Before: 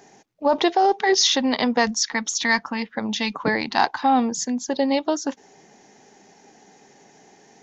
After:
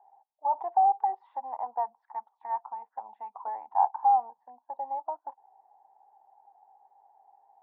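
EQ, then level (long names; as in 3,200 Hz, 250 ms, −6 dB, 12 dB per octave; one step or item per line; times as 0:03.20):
flat-topped band-pass 840 Hz, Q 3.7
high-frequency loss of the air 470 metres
0.0 dB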